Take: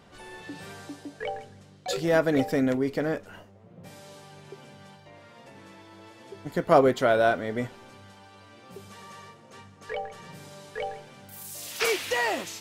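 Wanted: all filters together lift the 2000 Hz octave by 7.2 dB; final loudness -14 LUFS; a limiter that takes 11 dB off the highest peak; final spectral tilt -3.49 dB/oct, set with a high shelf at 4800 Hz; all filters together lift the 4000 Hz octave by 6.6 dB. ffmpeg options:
-af "equalizer=f=2k:t=o:g=7.5,equalizer=f=4k:t=o:g=3.5,highshelf=f=4.8k:g=5,volume=14dB,alimiter=limit=-1dB:level=0:latency=1"

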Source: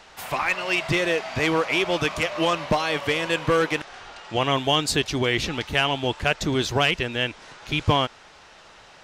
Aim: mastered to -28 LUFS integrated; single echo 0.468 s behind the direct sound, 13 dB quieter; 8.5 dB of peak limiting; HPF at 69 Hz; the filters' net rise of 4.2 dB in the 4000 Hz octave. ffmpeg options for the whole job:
-af "highpass=69,equalizer=f=4k:t=o:g=6,alimiter=limit=-14dB:level=0:latency=1,aecho=1:1:468:0.224,volume=-3dB"

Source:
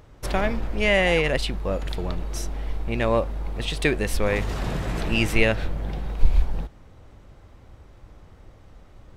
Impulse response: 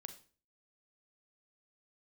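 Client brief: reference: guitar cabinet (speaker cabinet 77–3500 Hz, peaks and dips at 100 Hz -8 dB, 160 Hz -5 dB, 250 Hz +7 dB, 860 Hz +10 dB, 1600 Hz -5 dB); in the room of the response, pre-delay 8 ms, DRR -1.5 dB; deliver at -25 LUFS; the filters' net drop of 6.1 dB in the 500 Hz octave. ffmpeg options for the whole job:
-filter_complex "[0:a]equalizer=f=500:t=o:g=-8.5,asplit=2[a][b];[1:a]atrim=start_sample=2205,adelay=8[c];[b][c]afir=irnorm=-1:irlink=0,volume=6.5dB[d];[a][d]amix=inputs=2:normalize=0,highpass=77,equalizer=f=100:t=q:w=4:g=-8,equalizer=f=160:t=q:w=4:g=-5,equalizer=f=250:t=q:w=4:g=7,equalizer=f=860:t=q:w=4:g=10,equalizer=f=1.6k:t=q:w=4:g=-5,lowpass=f=3.5k:w=0.5412,lowpass=f=3.5k:w=1.3066,volume=-1.5dB"

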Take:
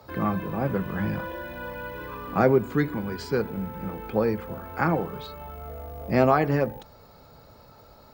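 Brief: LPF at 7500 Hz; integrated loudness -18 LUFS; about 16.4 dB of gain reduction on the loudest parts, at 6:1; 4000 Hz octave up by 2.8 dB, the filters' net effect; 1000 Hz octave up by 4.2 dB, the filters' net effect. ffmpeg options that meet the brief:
-af "lowpass=7.5k,equalizer=f=1k:t=o:g=5.5,equalizer=f=4k:t=o:g=3.5,acompressor=threshold=-31dB:ratio=6,volume=17.5dB"

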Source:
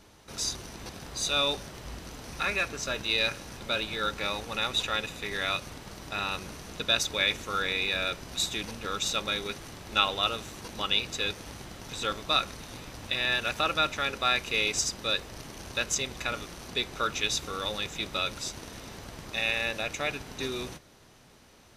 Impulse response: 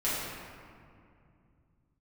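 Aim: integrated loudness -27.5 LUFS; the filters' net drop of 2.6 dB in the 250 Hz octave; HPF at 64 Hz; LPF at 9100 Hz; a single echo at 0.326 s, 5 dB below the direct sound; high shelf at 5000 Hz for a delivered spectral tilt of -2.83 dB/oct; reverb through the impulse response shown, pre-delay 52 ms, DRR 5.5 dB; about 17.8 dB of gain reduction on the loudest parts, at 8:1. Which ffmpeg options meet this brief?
-filter_complex "[0:a]highpass=64,lowpass=9.1k,equalizer=f=250:t=o:g=-3.5,highshelf=f=5k:g=-5.5,acompressor=threshold=-40dB:ratio=8,aecho=1:1:326:0.562,asplit=2[a][b];[1:a]atrim=start_sample=2205,adelay=52[c];[b][c]afir=irnorm=-1:irlink=0,volume=-15dB[d];[a][d]amix=inputs=2:normalize=0,volume=13.5dB"

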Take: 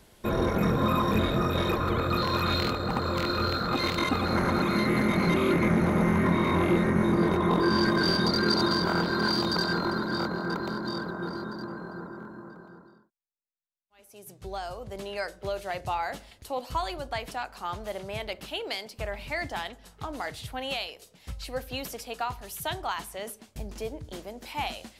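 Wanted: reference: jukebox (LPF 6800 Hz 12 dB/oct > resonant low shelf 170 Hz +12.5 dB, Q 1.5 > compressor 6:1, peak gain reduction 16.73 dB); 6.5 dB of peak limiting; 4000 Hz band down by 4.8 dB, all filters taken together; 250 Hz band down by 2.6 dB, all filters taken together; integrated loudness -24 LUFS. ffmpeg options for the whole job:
-af "equalizer=f=250:t=o:g=-7.5,equalizer=f=4k:t=o:g=-5,alimiter=limit=-20.5dB:level=0:latency=1,lowpass=6.8k,lowshelf=f=170:t=q:w=1.5:g=12.5,acompressor=threshold=-33dB:ratio=6,volume=14dB"

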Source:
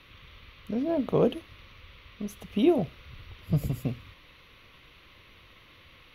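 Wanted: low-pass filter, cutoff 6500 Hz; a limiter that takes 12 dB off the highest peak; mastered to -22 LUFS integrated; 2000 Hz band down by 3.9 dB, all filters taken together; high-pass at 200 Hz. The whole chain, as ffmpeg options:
-af "highpass=200,lowpass=6.5k,equalizer=f=2k:t=o:g=-5,volume=13.5dB,alimiter=limit=-10dB:level=0:latency=1"

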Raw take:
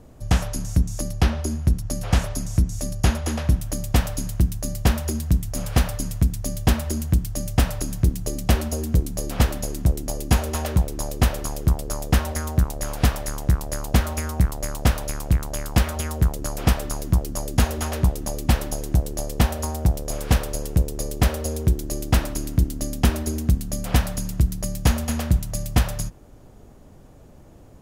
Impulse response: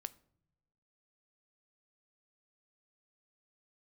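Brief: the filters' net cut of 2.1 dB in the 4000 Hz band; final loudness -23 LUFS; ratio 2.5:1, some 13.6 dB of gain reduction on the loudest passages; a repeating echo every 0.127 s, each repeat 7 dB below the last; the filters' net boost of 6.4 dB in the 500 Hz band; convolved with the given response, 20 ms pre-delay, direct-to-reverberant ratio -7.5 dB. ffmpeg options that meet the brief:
-filter_complex "[0:a]equalizer=f=500:t=o:g=8,equalizer=f=4k:t=o:g=-3,acompressor=threshold=-34dB:ratio=2.5,aecho=1:1:127|254|381|508|635:0.447|0.201|0.0905|0.0407|0.0183,asplit=2[a][b];[1:a]atrim=start_sample=2205,adelay=20[c];[b][c]afir=irnorm=-1:irlink=0,volume=11dB[d];[a][d]amix=inputs=2:normalize=0,volume=2.5dB"

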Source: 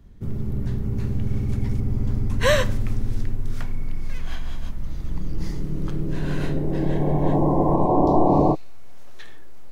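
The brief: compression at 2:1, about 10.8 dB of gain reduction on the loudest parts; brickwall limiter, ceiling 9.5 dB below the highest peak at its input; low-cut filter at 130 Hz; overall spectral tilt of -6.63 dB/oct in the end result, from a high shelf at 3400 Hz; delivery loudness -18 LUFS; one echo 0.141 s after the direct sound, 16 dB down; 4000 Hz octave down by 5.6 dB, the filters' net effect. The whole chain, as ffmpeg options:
-af "highpass=130,highshelf=f=3.4k:g=-3.5,equalizer=f=4k:t=o:g=-5,acompressor=threshold=-35dB:ratio=2,alimiter=level_in=3dB:limit=-24dB:level=0:latency=1,volume=-3dB,aecho=1:1:141:0.158,volume=18.5dB"

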